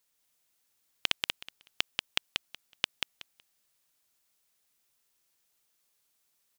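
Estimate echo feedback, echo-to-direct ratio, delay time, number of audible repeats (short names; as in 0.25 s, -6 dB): 18%, -3.5 dB, 0.186 s, 3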